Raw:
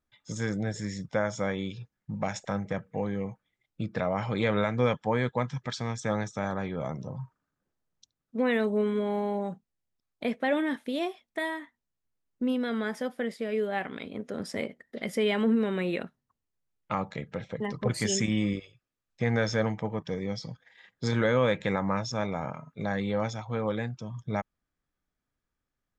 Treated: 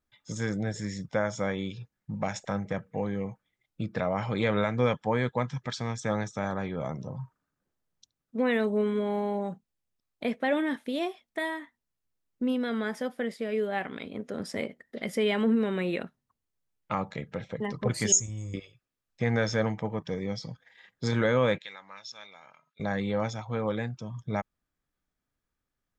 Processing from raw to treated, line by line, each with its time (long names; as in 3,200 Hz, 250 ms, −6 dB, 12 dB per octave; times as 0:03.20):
0:18.12–0:18.54: drawn EQ curve 100 Hz 0 dB, 200 Hz −20 dB, 580 Hz −13 dB, 1,000 Hz −10 dB, 1,700 Hz −23 dB, 4,400 Hz −21 dB, 6,700 Hz +13 dB, 11,000 Hz −22 dB
0:21.58–0:22.80: resonant band-pass 3,800 Hz, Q 1.9